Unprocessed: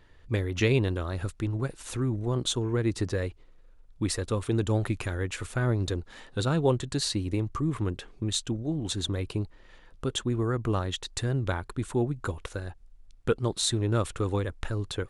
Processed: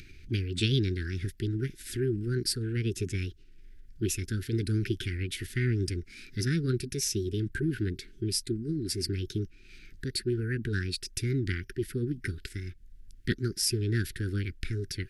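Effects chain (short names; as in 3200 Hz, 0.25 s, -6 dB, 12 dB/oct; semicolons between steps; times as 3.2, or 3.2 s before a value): formant shift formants +5 st; Chebyshev band-stop 390–1500 Hz, order 4; upward compressor, threshold -40 dBFS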